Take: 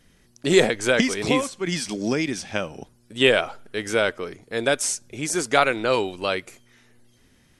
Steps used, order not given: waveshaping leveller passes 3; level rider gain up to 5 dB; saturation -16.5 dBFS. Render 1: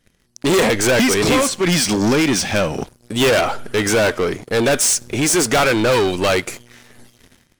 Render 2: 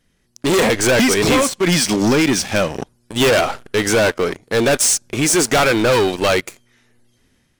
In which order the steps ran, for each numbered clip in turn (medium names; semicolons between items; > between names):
saturation > level rider > waveshaping leveller; waveshaping leveller > saturation > level rider